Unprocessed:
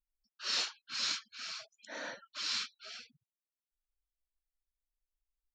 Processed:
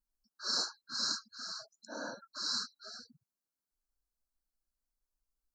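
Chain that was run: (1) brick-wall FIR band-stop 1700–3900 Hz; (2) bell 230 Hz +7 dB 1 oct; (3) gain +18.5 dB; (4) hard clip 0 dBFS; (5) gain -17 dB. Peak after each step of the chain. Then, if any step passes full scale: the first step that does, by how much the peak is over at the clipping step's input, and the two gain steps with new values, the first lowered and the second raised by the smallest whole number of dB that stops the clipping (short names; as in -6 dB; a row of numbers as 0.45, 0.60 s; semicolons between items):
-22.0, -22.0, -3.5, -3.5, -20.5 dBFS; no overload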